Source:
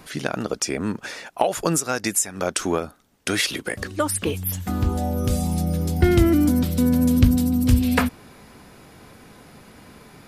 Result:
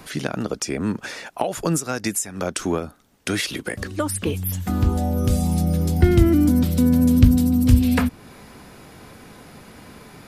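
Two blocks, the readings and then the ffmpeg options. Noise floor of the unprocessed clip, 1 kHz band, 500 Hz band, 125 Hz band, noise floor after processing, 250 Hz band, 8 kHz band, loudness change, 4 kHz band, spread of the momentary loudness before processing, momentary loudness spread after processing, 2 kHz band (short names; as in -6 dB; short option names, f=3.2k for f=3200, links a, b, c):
-49 dBFS, -2.5 dB, -1.0 dB, +3.0 dB, -46 dBFS, +2.0 dB, -2.5 dB, +1.5 dB, -2.0 dB, 10 LU, 12 LU, -2.0 dB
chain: -filter_complex "[0:a]acrossover=split=310[a][b];[b]acompressor=threshold=-36dB:ratio=1.5[c];[a][c]amix=inputs=2:normalize=0,volume=3dB"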